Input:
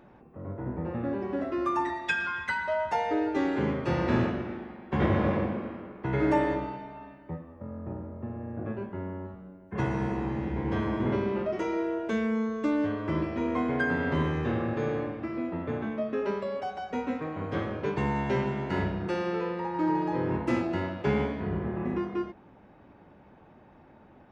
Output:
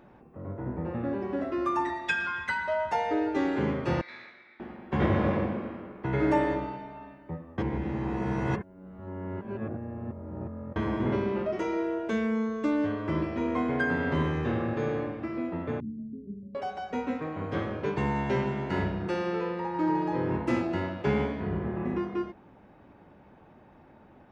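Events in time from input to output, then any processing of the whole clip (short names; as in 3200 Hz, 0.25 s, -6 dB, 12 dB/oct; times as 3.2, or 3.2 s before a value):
4.01–4.6 double band-pass 2900 Hz, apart 0.8 oct
7.58–10.76 reverse
15.8–16.55 inverse Chebyshev low-pass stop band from 800 Hz, stop band 60 dB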